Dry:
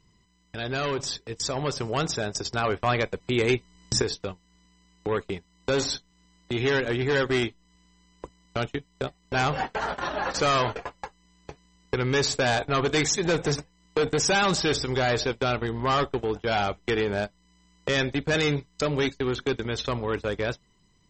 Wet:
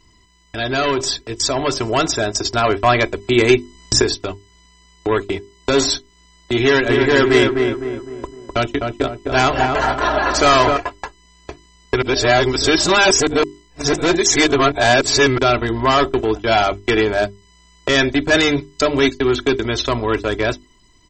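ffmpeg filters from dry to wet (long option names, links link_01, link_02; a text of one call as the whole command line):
ffmpeg -i in.wav -filter_complex "[0:a]asplit=3[link_01][link_02][link_03];[link_01]afade=type=out:start_time=6.88:duration=0.02[link_04];[link_02]asplit=2[link_05][link_06];[link_06]adelay=255,lowpass=frequency=1500:poles=1,volume=-3.5dB,asplit=2[link_07][link_08];[link_08]adelay=255,lowpass=frequency=1500:poles=1,volume=0.47,asplit=2[link_09][link_10];[link_10]adelay=255,lowpass=frequency=1500:poles=1,volume=0.47,asplit=2[link_11][link_12];[link_12]adelay=255,lowpass=frequency=1500:poles=1,volume=0.47,asplit=2[link_13][link_14];[link_14]adelay=255,lowpass=frequency=1500:poles=1,volume=0.47,asplit=2[link_15][link_16];[link_16]adelay=255,lowpass=frequency=1500:poles=1,volume=0.47[link_17];[link_05][link_07][link_09][link_11][link_13][link_15][link_17]amix=inputs=7:normalize=0,afade=type=in:start_time=6.88:duration=0.02,afade=type=out:start_time=10.76:duration=0.02[link_18];[link_03]afade=type=in:start_time=10.76:duration=0.02[link_19];[link_04][link_18][link_19]amix=inputs=3:normalize=0,asplit=3[link_20][link_21][link_22];[link_20]atrim=end=12.022[link_23];[link_21]atrim=start=12.018:end=15.382,asetpts=PTS-STARTPTS,areverse[link_24];[link_22]atrim=start=15.378[link_25];[link_23][link_24]acrossfade=duration=0.004:curve1=hsin:curve2=hsin[link_26];[link_26][link_25]acrossfade=duration=0.004:curve1=hsin:curve2=hsin,bandreject=frequency=50:width_type=h:width=6,bandreject=frequency=100:width_type=h:width=6,bandreject=frequency=150:width_type=h:width=6,bandreject=frequency=200:width_type=h:width=6,bandreject=frequency=250:width_type=h:width=6,bandreject=frequency=300:width_type=h:width=6,bandreject=frequency=350:width_type=h:width=6,bandreject=frequency=400:width_type=h:width=6,aecho=1:1:3:0.6,volume=9dB" out.wav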